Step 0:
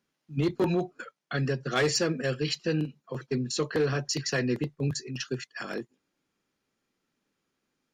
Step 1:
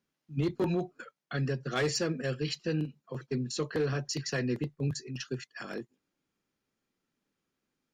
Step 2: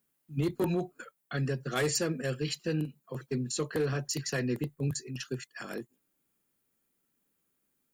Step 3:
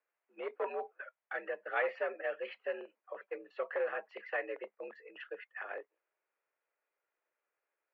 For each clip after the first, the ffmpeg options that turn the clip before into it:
ffmpeg -i in.wav -af "lowshelf=frequency=230:gain=4,volume=-5dB" out.wav
ffmpeg -i in.wav -af "aexciter=amount=6.7:drive=2.8:freq=7800" out.wav
ffmpeg -i in.wav -af "highpass=frequency=450:width_type=q:width=0.5412,highpass=frequency=450:width_type=q:width=1.307,lowpass=frequency=2400:width_type=q:width=0.5176,lowpass=frequency=2400:width_type=q:width=0.7071,lowpass=frequency=2400:width_type=q:width=1.932,afreqshift=66" out.wav

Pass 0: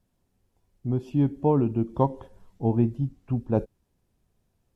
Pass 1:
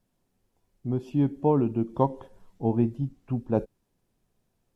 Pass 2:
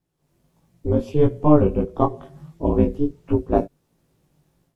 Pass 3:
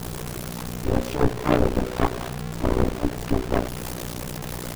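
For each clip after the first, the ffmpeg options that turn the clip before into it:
ffmpeg -i in.wav -af "equalizer=frequency=61:width_type=o:width=1.4:gain=-10" out.wav
ffmpeg -i in.wav -af "aeval=exprs='val(0)*sin(2*PI*150*n/s)':channel_layout=same,dynaudnorm=framelen=160:gausssize=3:maxgain=13dB,flanger=delay=17.5:depth=3.4:speed=1.5,volume=2dB" out.wav
ffmpeg -i in.wav -af "aeval=exprs='val(0)+0.5*0.119*sgn(val(0))':channel_layout=same,tremolo=f=61:d=0.919,aeval=exprs='0.841*(cos(1*acos(clip(val(0)/0.841,-1,1)))-cos(1*PI/2))+0.168*(cos(8*acos(clip(val(0)/0.841,-1,1)))-cos(8*PI/2))':channel_layout=same,volume=-4dB" out.wav

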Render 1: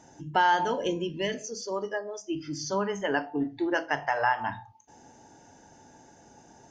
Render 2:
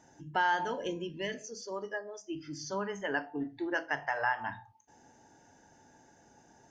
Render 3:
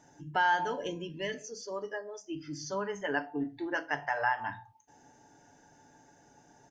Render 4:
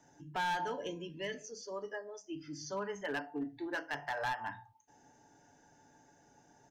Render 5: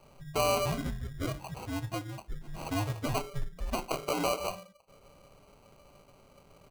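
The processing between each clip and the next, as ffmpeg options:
ffmpeg -i in.wav -af "equalizer=frequency=1700:width=2.6:gain=4.5,volume=-7dB" out.wav
ffmpeg -i in.wav -af "aecho=1:1:6.9:0.33" out.wav
ffmpeg -i in.wav -filter_complex "[0:a]acrossover=split=160|800|1800[link_01][link_02][link_03][link_04];[link_01]alimiter=level_in=26.5dB:limit=-24dB:level=0:latency=1,volume=-26.5dB[link_05];[link_05][link_02][link_03][link_04]amix=inputs=4:normalize=0,volume=26.5dB,asoftclip=hard,volume=-26.5dB,volume=-4dB" out.wav
ffmpeg -i in.wav -filter_complex "[0:a]afftfilt=real='real(if(lt(b,272),68*(eq(floor(b/68),0)*2+eq(floor(b/68),1)*0+eq(floor(b/68),2)*3+eq(floor(b/68),3)*1)+mod(b,68),b),0)':imag='imag(if(lt(b,272),68*(eq(floor(b/68),0)*2+eq(floor(b/68),1)*0+eq(floor(b/68),2)*3+eq(floor(b/68),3)*1)+mod(b,68),b),0)':win_size=2048:overlap=0.75,acrossover=split=210[link_01][link_02];[link_02]acrusher=samples=25:mix=1:aa=0.000001[link_03];[link_01][link_03]amix=inputs=2:normalize=0,volume=6.5dB" out.wav

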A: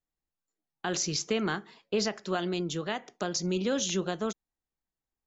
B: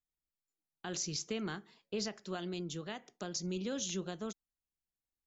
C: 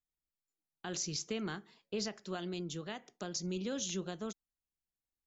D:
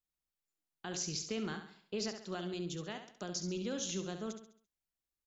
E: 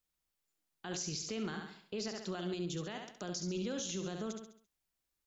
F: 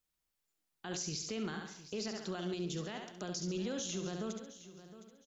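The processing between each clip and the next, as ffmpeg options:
ffmpeg -i in.wav -af "equalizer=frequency=980:width=0.32:gain=-6,volume=-5.5dB" out.wav
ffmpeg -i in.wav -af anull out.wav
ffmpeg -i in.wav -af "aecho=1:1:68|136|204|272|340:0.376|0.158|0.0663|0.0278|0.0117,volume=-1dB" out.wav
ffmpeg -i in.wav -af "alimiter=level_in=11.5dB:limit=-24dB:level=0:latency=1:release=84,volume=-11.5dB,volume=5.5dB" out.wav
ffmpeg -i in.wav -af "aecho=1:1:713|1426|2139:0.178|0.0445|0.0111" out.wav

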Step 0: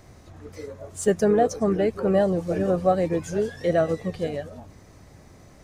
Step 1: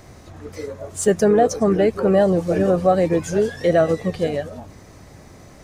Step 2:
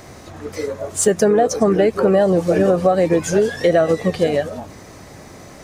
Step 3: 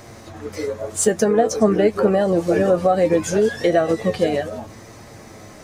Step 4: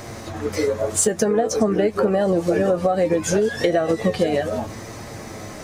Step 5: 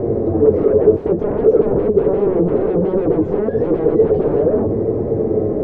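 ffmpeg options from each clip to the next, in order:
ffmpeg -i in.wav -filter_complex "[0:a]lowshelf=frequency=140:gain=-3,asplit=2[link_01][link_02];[link_02]alimiter=limit=-16.5dB:level=0:latency=1,volume=1.5dB[link_03];[link_01][link_03]amix=inputs=2:normalize=0" out.wav
ffmpeg -i in.wav -af "lowshelf=frequency=130:gain=-9,acompressor=threshold=-18dB:ratio=6,volume=7dB" out.wav
ffmpeg -i in.wav -af "flanger=delay=8.6:depth=1.1:regen=49:speed=0.8:shape=triangular,volume=2.5dB" out.wav
ffmpeg -i in.wav -af "acompressor=threshold=-22dB:ratio=6,volume=6dB" out.wav
ffmpeg -i in.wav -af "aeval=exprs='0.473*sin(PI/2*7.94*val(0)/0.473)':channel_layout=same,lowpass=frequency=430:width_type=q:width=4.9,volume=-8.5dB" out.wav

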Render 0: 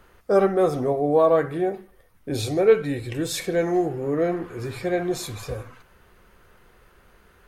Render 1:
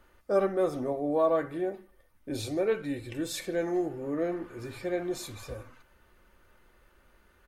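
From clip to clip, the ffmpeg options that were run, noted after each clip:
ffmpeg -i in.wav -af "aecho=1:1:3.4:0.39,volume=-8dB" out.wav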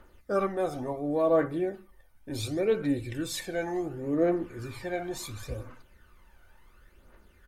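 ffmpeg -i in.wav -af "aphaser=in_gain=1:out_gain=1:delay=1.4:decay=0.54:speed=0.7:type=triangular" out.wav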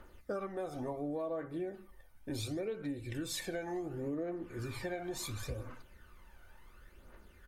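ffmpeg -i in.wav -af "acompressor=threshold=-35dB:ratio=12" out.wav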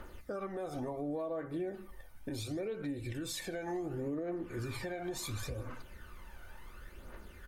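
ffmpeg -i in.wav -af "alimiter=level_in=13.5dB:limit=-24dB:level=0:latency=1:release=279,volume=-13.5dB,volume=7dB" out.wav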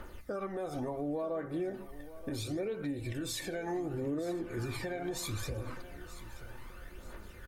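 ffmpeg -i in.wav -af "aecho=1:1:930|1860|2790:0.168|0.0621|0.023,volume=2dB" out.wav

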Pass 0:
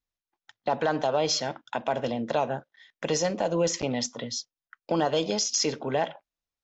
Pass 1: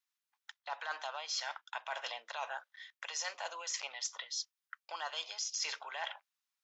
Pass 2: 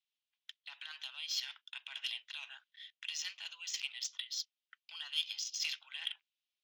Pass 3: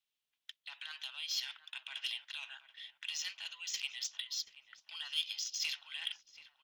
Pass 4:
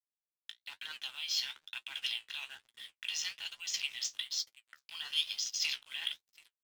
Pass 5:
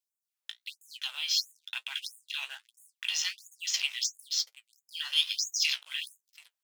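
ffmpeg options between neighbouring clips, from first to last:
ffmpeg -i in.wav -af "highpass=frequency=1000:width=0.5412,highpass=frequency=1000:width=1.3066,areverse,acompressor=threshold=-40dB:ratio=5,areverse,volume=3dB" out.wav
ffmpeg -i in.wav -af "highpass=frequency=3000:width_type=q:width=2.8,adynamicsmooth=sensitivity=5.5:basefreq=5100,volume=-2dB" out.wav
ffmpeg -i in.wav -filter_complex "[0:a]asplit=2[link_01][link_02];[link_02]asoftclip=type=tanh:threshold=-38.5dB,volume=-6.5dB[link_03];[link_01][link_03]amix=inputs=2:normalize=0,asplit=2[link_04][link_05];[link_05]adelay=731,lowpass=frequency=1300:poles=1,volume=-11dB,asplit=2[link_06][link_07];[link_07]adelay=731,lowpass=frequency=1300:poles=1,volume=0.53,asplit=2[link_08][link_09];[link_09]adelay=731,lowpass=frequency=1300:poles=1,volume=0.53,asplit=2[link_10][link_11];[link_11]adelay=731,lowpass=frequency=1300:poles=1,volume=0.53,asplit=2[link_12][link_13];[link_13]adelay=731,lowpass=frequency=1300:poles=1,volume=0.53,asplit=2[link_14][link_15];[link_15]adelay=731,lowpass=frequency=1300:poles=1,volume=0.53[link_16];[link_04][link_06][link_08][link_10][link_12][link_14][link_16]amix=inputs=7:normalize=0,volume=-1.5dB" out.wav
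ffmpeg -i in.wav -af "aeval=exprs='sgn(val(0))*max(abs(val(0))-0.00178,0)':channel_layout=same,flanger=delay=8.5:depth=9.9:regen=42:speed=1.1:shape=sinusoidal,volume=8dB" out.wav
ffmpeg -i in.wav -af "afftfilt=real='re*gte(b*sr/1024,420*pow(6600/420,0.5+0.5*sin(2*PI*1.5*pts/sr)))':imag='im*gte(b*sr/1024,420*pow(6600/420,0.5+0.5*sin(2*PI*1.5*pts/sr)))':win_size=1024:overlap=0.75,volume=6dB" out.wav

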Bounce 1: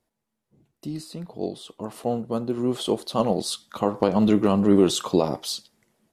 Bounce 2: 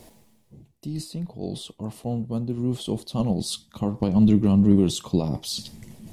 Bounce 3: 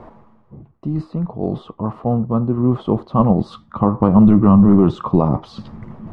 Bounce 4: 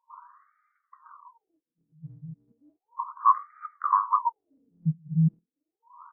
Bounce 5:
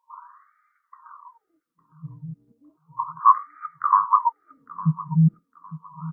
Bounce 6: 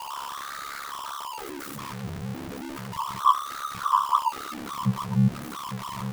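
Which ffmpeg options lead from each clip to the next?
ffmpeg -i in.wav -af "asubboost=boost=7.5:cutoff=180,areverse,acompressor=mode=upward:threshold=-19dB:ratio=2.5,areverse,equalizer=frequency=1400:width=1.8:gain=-10,volume=-4.5dB" out.wav
ffmpeg -i in.wav -af "apsyclip=13.5dB,lowpass=frequency=1200:width_type=q:width=4.4,volume=-4.5dB" out.wav
ffmpeg -i in.wav -filter_complex "[0:a]acrossover=split=420|3000[link_01][link_02][link_03];[link_02]adelay=100[link_04];[link_03]adelay=180[link_05];[link_01][link_04][link_05]amix=inputs=3:normalize=0,afftfilt=real='re*(1-between(b*sr/4096,170,920))':imag='im*(1-between(b*sr/4096,170,920))':win_size=4096:overlap=0.75,afftfilt=real='re*between(b*sr/1024,220*pow(1700/220,0.5+0.5*sin(2*PI*0.34*pts/sr))/1.41,220*pow(1700/220,0.5+0.5*sin(2*PI*0.34*pts/sr))*1.41)':imag='im*between(b*sr/1024,220*pow(1700/220,0.5+0.5*sin(2*PI*0.34*pts/sr))/1.41,220*pow(1700/220,0.5+0.5*sin(2*PI*0.34*pts/sr))*1.41)':win_size=1024:overlap=0.75,volume=4dB" out.wav
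ffmpeg -i in.wav -filter_complex "[0:a]asplit=2[link_01][link_02];[link_02]adelay=857,lowpass=frequency=1600:poles=1,volume=-16dB,asplit=2[link_03][link_04];[link_04]adelay=857,lowpass=frequency=1600:poles=1,volume=0.32,asplit=2[link_05][link_06];[link_06]adelay=857,lowpass=frequency=1600:poles=1,volume=0.32[link_07];[link_01][link_03][link_05][link_07]amix=inputs=4:normalize=0,volume=5dB" out.wav
ffmpeg -i in.wav -af "aeval=exprs='val(0)+0.5*0.0531*sgn(val(0))':channel_layout=same,aeval=exprs='val(0)*sin(2*PI*35*n/s)':channel_layout=same,asoftclip=type=hard:threshold=-7.5dB,volume=-2dB" out.wav

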